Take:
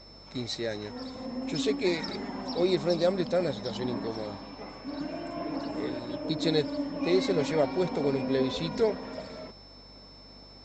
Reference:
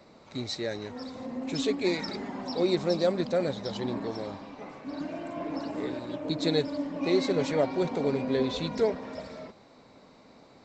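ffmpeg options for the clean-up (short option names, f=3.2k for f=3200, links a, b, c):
-af "bandreject=f=49:t=h:w=4,bandreject=f=98:t=h:w=4,bandreject=f=147:t=h:w=4,bandreject=f=196:t=h:w=4,bandreject=f=245:t=h:w=4,bandreject=f=294:t=h:w=4,bandreject=f=5.3k:w=30"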